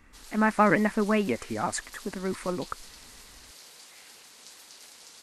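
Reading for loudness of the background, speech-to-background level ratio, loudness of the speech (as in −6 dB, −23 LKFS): −46.5 LKFS, 19.5 dB, −27.0 LKFS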